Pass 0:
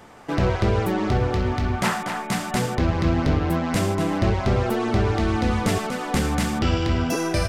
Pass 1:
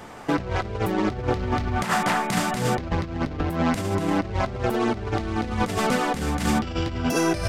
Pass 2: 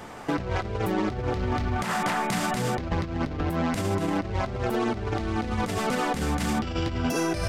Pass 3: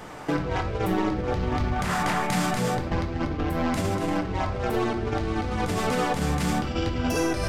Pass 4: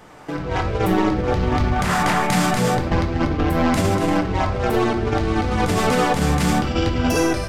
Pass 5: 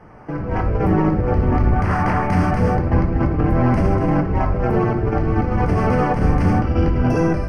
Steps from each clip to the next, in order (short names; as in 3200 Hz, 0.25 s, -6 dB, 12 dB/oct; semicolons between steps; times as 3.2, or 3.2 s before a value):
negative-ratio compressor -25 dBFS, ratio -0.5; gain +1.5 dB
limiter -17.5 dBFS, peak gain reduction 7.5 dB
shoebox room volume 150 m³, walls mixed, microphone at 0.53 m
AGC gain up to 14.5 dB; gain -5 dB
octaver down 1 oct, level +2 dB; running mean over 12 samples